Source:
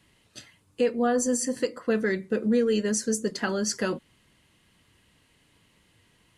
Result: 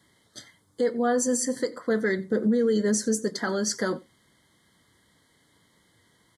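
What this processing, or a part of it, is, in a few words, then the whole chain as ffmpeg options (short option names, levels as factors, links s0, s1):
PA system with an anti-feedback notch: -filter_complex "[0:a]asettb=1/sr,asplit=3[s0][s1][s2];[s0]atrim=end=2.184[s3];[s1]atrim=start=2.18:end=3.19,asetpts=PTS-STARTPTS,afade=t=in:d=0.004:c=qsin,afade=t=out:st=1.006:d=0.004:c=qsin,lowshelf=f=490:g=5.5[s4];[s2]atrim=start=3.186[s5];[s3][s4]acrossfade=d=0.004:c1=hsin:c2=qsin[s6];[s6][s5]acrossfade=d=0.004:c1=qsin:c2=hsin,highpass=f=140:p=1,asuperstop=centerf=2600:order=12:qfactor=3,aecho=1:1:90:0.0668,alimiter=limit=0.133:level=0:latency=1:release=20,volume=1.19"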